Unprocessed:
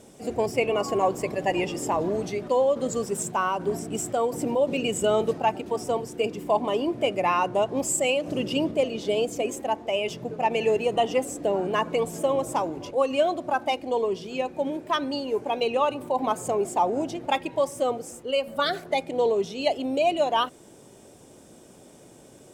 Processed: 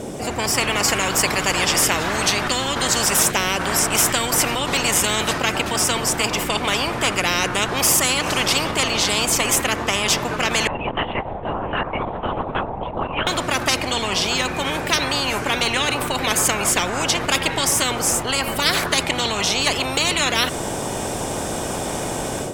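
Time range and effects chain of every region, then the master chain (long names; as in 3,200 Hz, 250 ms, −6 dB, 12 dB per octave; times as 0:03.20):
0:10.67–0:13.27: pair of resonant band-passes 300 Hz, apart 2.8 octaves + spectral tilt +3 dB per octave + linear-prediction vocoder at 8 kHz whisper
whole clip: high-shelf EQ 2,200 Hz −7 dB; automatic gain control gain up to 11.5 dB; every bin compressed towards the loudest bin 10 to 1; level +1 dB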